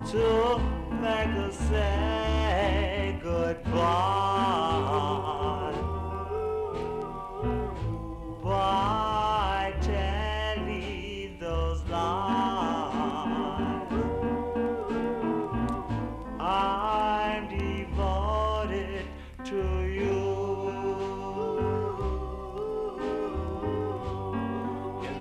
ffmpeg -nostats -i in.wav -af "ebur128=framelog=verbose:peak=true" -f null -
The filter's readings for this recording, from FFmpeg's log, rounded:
Integrated loudness:
  I:         -29.4 LUFS
  Threshold: -39.4 LUFS
Loudness range:
  LRA:         4.7 LU
  Threshold: -49.4 LUFS
  LRA low:   -31.9 LUFS
  LRA high:  -27.1 LUFS
True peak:
  Peak:      -15.1 dBFS